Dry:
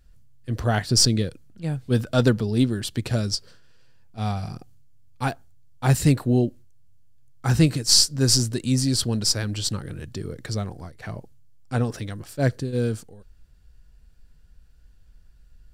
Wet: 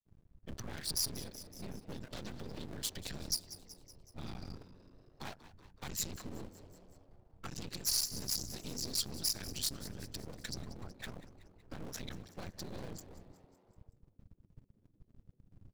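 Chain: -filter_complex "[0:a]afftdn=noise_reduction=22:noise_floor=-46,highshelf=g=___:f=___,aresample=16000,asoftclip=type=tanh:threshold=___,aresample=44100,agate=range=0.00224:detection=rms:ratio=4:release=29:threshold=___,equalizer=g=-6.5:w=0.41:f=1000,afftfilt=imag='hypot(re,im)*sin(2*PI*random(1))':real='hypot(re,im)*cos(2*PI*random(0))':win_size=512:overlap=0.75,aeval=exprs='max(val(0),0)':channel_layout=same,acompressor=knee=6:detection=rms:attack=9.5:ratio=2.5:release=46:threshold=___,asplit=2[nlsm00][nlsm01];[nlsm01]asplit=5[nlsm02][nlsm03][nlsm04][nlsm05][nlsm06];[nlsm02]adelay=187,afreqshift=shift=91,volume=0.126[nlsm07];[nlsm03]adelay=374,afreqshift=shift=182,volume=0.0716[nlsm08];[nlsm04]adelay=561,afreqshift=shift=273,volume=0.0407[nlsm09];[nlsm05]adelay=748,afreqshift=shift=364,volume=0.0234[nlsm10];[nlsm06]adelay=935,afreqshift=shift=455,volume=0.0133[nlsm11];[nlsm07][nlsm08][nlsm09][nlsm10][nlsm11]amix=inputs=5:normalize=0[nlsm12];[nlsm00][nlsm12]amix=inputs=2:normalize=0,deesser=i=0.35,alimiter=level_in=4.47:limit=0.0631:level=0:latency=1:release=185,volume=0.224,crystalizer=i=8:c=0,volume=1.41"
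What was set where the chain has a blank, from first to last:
-10.5, 4200, 0.141, 0.00398, 0.00562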